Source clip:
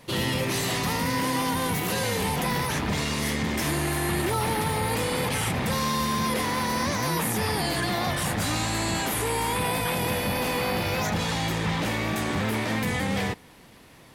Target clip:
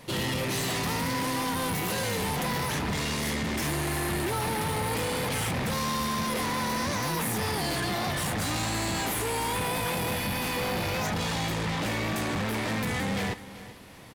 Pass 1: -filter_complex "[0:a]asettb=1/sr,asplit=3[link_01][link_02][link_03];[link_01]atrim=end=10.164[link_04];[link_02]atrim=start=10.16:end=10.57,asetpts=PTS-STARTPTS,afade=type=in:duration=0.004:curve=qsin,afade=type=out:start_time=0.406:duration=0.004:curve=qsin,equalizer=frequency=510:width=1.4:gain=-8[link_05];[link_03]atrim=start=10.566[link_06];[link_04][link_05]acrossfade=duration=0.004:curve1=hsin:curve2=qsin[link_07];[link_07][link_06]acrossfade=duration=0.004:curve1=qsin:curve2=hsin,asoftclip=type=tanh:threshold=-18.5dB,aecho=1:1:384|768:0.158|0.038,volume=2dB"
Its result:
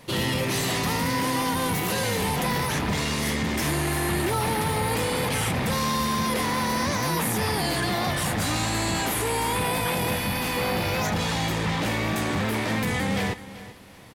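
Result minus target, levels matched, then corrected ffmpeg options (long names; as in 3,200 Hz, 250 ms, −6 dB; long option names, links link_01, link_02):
soft clipping: distortion −12 dB
-filter_complex "[0:a]asettb=1/sr,asplit=3[link_01][link_02][link_03];[link_01]atrim=end=10.164[link_04];[link_02]atrim=start=10.16:end=10.57,asetpts=PTS-STARTPTS,afade=type=in:duration=0.004:curve=qsin,afade=type=out:start_time=0.406:duration=0.004:curve=qsin,equalizer=frequency=510:width=1.4:gain=-8[link_05];[link_03]atrim=start=10.566[link_06];[link_04][link_05]acrossfade=duration=0.004:curve1=hsin:curve2=qsin[link_07];[link_07][link_06]acrossfade=duration=0.004:curve1=qsin:curve2=hsin,asoftclip=type=tanh:threshold=-28dB,aecho=1:1:384|768:0.158|0.038,volume=2dB"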